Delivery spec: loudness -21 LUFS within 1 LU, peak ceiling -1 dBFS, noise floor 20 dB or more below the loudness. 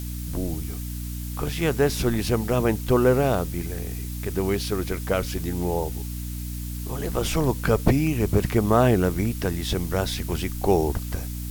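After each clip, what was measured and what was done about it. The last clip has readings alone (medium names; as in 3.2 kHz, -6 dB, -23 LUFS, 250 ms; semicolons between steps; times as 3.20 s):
hum 60 Hz; highest harmonic 300 Hz; hum level -30 dBFS; noise floor -32 dBFS; noise floor target -45 dBFS; loudness -25.0 LUFS; peak level -3.0 dBFS; loudness target -21.0 LUFS
-> de-hum 60 Hz, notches 5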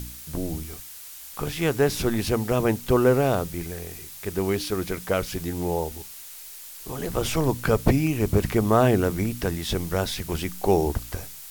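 hum not found; noise floor -42 dBFS; noise floor target -45 dBFS
-> noise print and reduce 6 dB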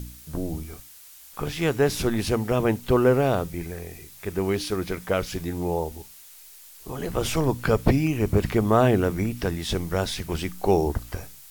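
noise floor -48 dBFS; loudness -25.0 LUFS; peak level -4.0 dBFS; loudness target -21.0 LUFS
-> trim +4 dB; peak limiter -1 dBFS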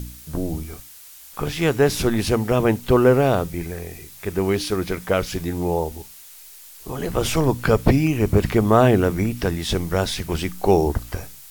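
loudness -21.0 LUFS; peak level -1.0 dBFS; noise floor -44 dBFS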